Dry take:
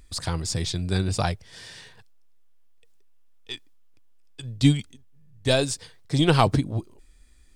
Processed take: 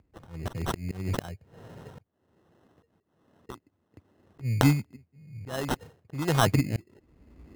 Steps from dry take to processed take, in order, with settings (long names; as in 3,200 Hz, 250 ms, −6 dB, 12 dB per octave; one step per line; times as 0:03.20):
adaptive Wiener filter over 25 samples
camcorder AGC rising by 23 dB per second
high-pass filter 78 Hz 24 dB per octave
parametric band 7,200 Hz +8.5 dB 0.38 octaves
volume swells 372 ms
decimation without filtering 19×
one half of a high-frequency compander decoder only
level −1.5 dB